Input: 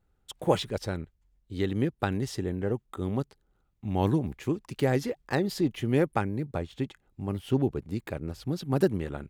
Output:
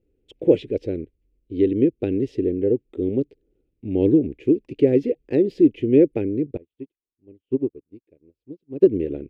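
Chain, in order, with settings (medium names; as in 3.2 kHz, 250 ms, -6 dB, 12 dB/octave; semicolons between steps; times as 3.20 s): FFT filter 200 Hz 0 dB, 290 Hz +13 dB, 480 Hz +11 dB, 790 Hz -14 dB, 1.2 kHz -24 dB, 2.5 kHz +1 dB, 3.9 kHz -11 dB, 12 kHz -27 dB; 6.57–8.87 s: upward expansion 2.5:1, over -33 dBFS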